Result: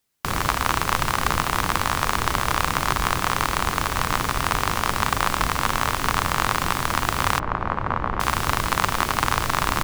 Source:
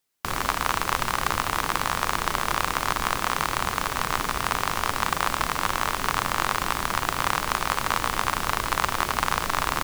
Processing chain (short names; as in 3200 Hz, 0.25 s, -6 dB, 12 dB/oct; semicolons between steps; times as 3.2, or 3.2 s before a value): octaver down 1 oct, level +3 dB; 7.39–8.2 LPF 1300 Hz 12 dB/oct; gain +2.5 dB